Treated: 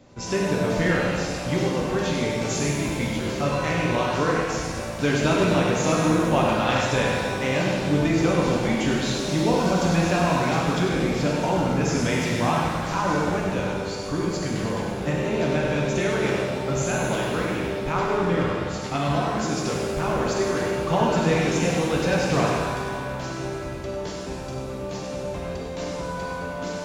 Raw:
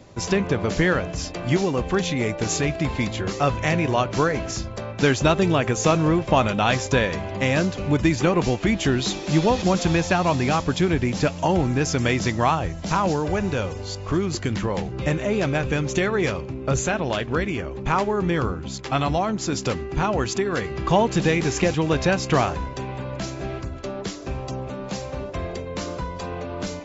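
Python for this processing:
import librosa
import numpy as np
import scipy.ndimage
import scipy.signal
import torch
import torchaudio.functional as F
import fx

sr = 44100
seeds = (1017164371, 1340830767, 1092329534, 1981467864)

y = x + 10.0 ** (-6.5 / 20.0) * np.pad(x, (int(97 * sr / 1000.0), 0))[:len(x)]
y = fx.rev_shimmer(y, sr, seeds[0], rt60_s=1.8, semitones=7, shimmer_db=-8, drr_db=-2.5)
y = y * librosa.db_to_amplitude(-7.0)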